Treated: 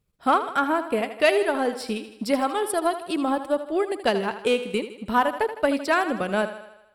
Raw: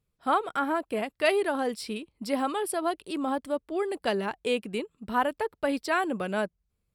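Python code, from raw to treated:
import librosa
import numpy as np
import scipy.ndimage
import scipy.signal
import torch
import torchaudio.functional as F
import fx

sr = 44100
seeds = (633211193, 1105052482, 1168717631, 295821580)

p1 = fx.transient(x, sr, attack_db=4, sustain_db=-6)
p2 = 10.0 ** (-21.0 / 20.0) * np.tanh(p1 / 10.0 ** (-21.0 / 20.0))
p3 = p1 + (p2 * 10.0 ** (-3.5 / 20.0))
y = fx.echo_thinned(p3, sr, ms=79, feedback_pct=57, hz=170.0, wet_db=-11.5)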